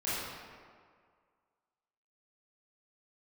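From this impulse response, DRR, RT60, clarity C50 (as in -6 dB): -12.0 dB, 1.9 s, -3.5 dB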